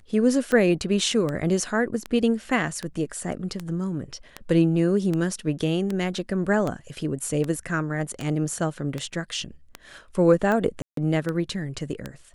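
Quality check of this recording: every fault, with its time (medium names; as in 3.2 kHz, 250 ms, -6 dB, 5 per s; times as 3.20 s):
tick 78 rpm -15 dBFS
10.82–10.97 s: dropout 153 ms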